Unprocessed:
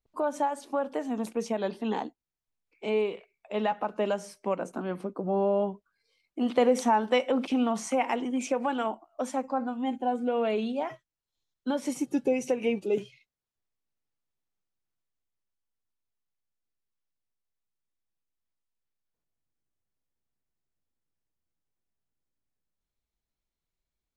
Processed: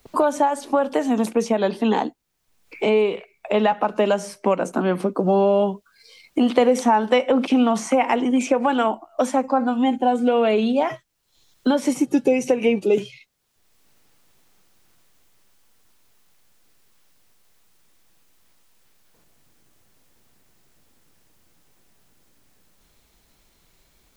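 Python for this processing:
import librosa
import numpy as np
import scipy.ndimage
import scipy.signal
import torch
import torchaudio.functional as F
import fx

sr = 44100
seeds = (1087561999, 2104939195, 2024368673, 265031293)

y = fx.band_squash(x, sr, depth_pct=70)
y = y * librosa.db_to_amplitude(9.0)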